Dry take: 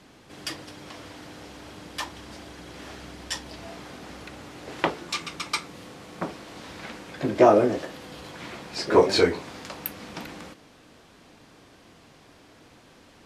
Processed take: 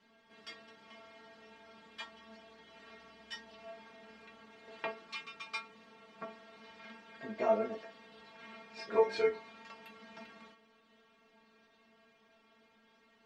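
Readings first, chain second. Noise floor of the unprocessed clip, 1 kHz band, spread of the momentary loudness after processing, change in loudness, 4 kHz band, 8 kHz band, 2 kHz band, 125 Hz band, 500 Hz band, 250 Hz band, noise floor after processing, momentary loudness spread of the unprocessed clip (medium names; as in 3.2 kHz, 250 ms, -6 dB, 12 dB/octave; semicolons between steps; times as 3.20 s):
-54 dBFS, -13.0 dB, 24 LU, -12.0 dB, -16.0 dB, under -20 dB, -11.0 dB, under -20 dB, -11.5 dB, -19.0 dB, -68 dBFS, 23 LU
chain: low-pass 2.7 kHz 12 dB/octave; tilt EQ +2 dB/octave; inharmonic resonator 220 Hz, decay 0.22 s, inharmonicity 0.002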